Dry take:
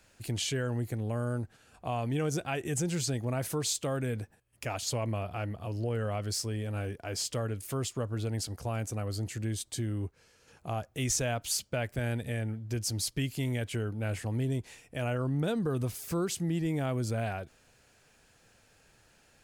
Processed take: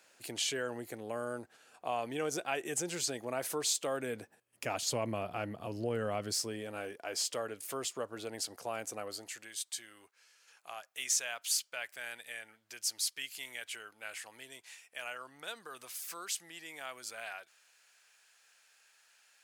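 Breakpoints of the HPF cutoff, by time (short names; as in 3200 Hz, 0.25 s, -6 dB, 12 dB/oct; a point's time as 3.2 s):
3.9 s 400 Hz
4.74 s 190 Hz
6.22 s 190 Hz
6.92 s 440 Hz
9.04 s 440 Hz
9.54 s 1300 Hz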